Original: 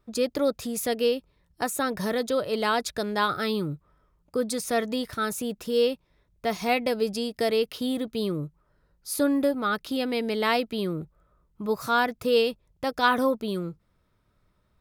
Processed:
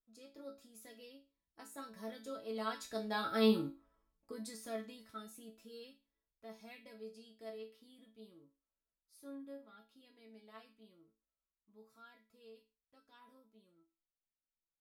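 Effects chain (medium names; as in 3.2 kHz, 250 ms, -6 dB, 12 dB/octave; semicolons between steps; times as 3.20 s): Doppler pass-by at 3.57 s, 6 m/s, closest 1.6 m; chord resonator A3 major, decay 0.3 s; trim +12 dB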